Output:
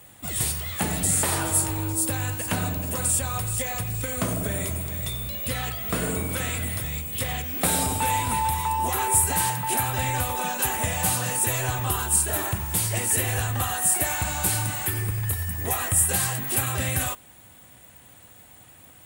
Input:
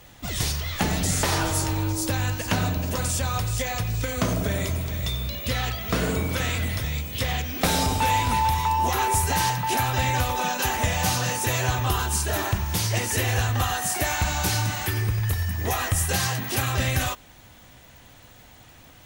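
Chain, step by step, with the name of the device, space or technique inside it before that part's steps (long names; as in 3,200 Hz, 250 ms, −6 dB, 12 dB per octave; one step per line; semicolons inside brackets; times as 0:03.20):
budget condenser microphone (high-pass filter 69 Hz; high shelf with overshoot 7,100 Hz +6.5 dB, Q 3)
level −2.5 dB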